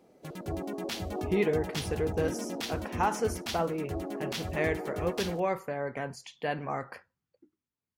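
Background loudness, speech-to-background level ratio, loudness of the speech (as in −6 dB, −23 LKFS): −36.5 LKFS, 3.5 dB, −33.0 LKFS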